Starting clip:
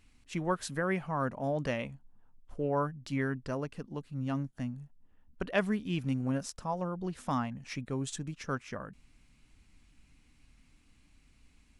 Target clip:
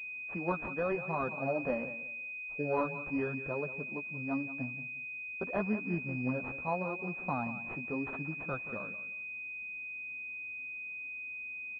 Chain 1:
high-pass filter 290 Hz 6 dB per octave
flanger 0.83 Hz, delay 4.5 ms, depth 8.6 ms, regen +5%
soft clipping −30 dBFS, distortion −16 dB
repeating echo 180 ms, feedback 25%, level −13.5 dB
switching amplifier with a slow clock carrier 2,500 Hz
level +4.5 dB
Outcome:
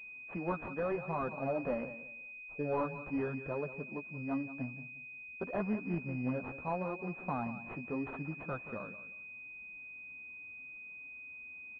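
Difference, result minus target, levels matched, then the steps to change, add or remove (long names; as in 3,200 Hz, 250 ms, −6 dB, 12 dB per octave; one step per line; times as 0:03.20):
soft clipping: distortion +18 dB
change: soft clipping −18.5 dBFS, distortion −34 dB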